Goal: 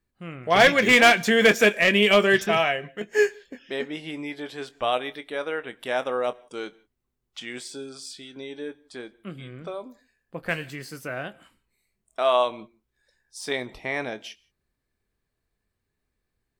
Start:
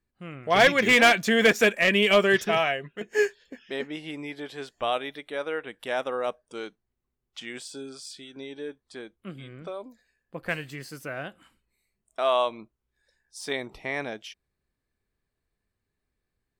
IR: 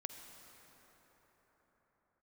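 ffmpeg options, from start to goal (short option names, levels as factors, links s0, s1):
-filter_complex "[0:a]asplit=2[s0][s1];[1:a]atrim=start_sample=2205,afade=t=out:st=0.21:d=0.01,atrim=end_sample=9702,adelay=24[s2];[s1][s2]afir=irnorm=-1:irlink=0,volume=0.335[s3];[s0][s3]amix=inputs=2:normalize=0,volume=1.26"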